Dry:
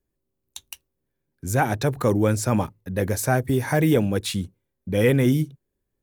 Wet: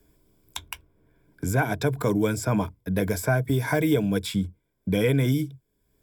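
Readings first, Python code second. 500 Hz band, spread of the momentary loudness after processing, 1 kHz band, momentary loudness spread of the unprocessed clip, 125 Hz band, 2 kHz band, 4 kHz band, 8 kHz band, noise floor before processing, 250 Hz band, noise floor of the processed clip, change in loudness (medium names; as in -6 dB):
-3.0 dB, 15 LU, -4.5 dB, 15 LU, -2.5 dB, -1.0 dB, -1.5 dB, -4.5 dB, -80 dBFS, -2.0 dB, -74 dBFS, -2.5 dB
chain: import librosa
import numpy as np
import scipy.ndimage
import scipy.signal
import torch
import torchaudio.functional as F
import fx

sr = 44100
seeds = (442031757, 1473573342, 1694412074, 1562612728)

y = fx.ripple_eq(x, sr, per_octave=1.7, db=10)
y = fx.band_squash(y, sr, depth_pct=70)
y = y * 10.0 ** (-4.0 / 20.0)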